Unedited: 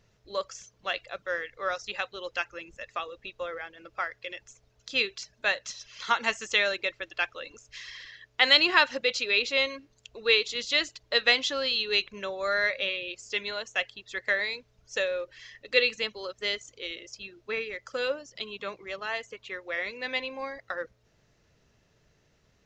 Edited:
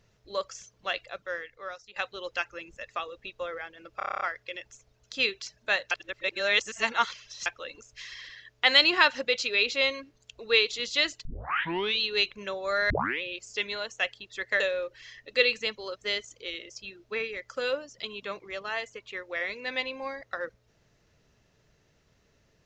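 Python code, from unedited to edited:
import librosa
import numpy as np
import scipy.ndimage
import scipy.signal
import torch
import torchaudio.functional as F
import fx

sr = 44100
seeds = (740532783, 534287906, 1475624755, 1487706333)

y = fx.edit(x, sr, fx.fade_out_to(start_s=0.98, length_s=0.98, floor_db=-18.0),
    fx.stutter(start_s=3.97, slice_s=0.03, count=9),
    fx.reverse_span(start_s=5.67, length_s=1.55),
    fx.tape_start(start_s=11.01, length_s=0.77),
    fx.tape_start(start_s=12.66, length_s=0.32),
    fx.cut(start_s=14.36, length_s=0.61), tone=tone)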